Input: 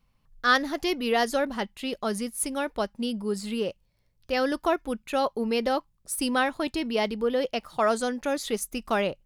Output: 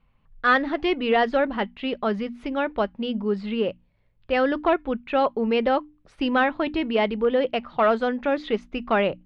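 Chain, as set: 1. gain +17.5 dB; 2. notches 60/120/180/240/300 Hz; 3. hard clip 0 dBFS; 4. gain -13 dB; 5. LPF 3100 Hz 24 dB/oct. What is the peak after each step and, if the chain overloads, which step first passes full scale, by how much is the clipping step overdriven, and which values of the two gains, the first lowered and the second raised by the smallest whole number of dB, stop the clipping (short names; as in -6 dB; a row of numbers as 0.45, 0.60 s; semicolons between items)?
+7.5, +7.5, 0.0, -13.0, -11.5 dBFS; step 1, 7.5 dB; step 1 +9.5 dB, step 4 -5 dB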